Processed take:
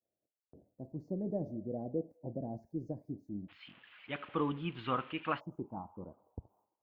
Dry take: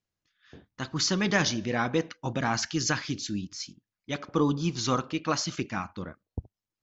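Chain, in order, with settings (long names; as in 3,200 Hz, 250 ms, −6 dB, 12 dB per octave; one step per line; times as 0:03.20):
spike at every zero crossing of −28 dBFS
elliptic low-pass filter 640 Hz, stop band 50 dB, from 0:03.48 3,000 Hz, from 0:05.39 920 Hz
downward expander −58 dBFS
low-shelf EQ 480 Hz −6.5 dB
level −4 dB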